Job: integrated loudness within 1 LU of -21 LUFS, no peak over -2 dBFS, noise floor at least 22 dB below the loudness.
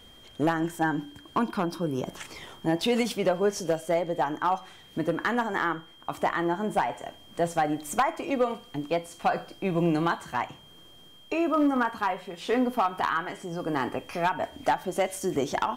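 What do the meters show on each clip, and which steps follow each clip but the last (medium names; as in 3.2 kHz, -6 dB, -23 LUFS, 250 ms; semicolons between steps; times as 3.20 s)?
clipped samples 0.4%; clipping level -16.5 dBFS; steady tone 3.2 kHz; tone level -52 dBFS; loudness -28.5 LUFS; peak level -16.5 dBFS; loudness target -21.0 LUFS
-> clip repair -16.5 dBFS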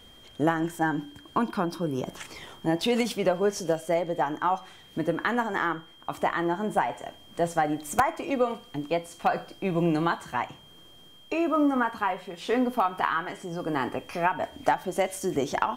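clipped samples 0.0%; steady tone 3.2 kHz; tone level -52 dBFS
-> band-stop 3.2 kHz, Q 30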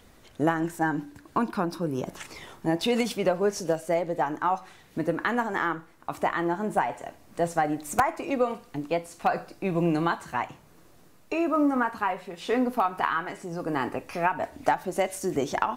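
steady tone not found; loudness -28.0 LUFS; peak level -7.5 dBFS; loudness target -21.0 LUFS
-> trim +7 dB; peak limiter -2 dBFS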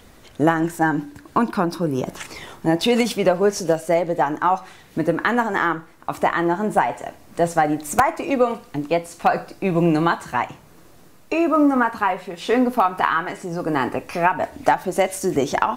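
loudness -21.0 LUFS; peak level -2.0 dBFS; noise floor -48 dBFS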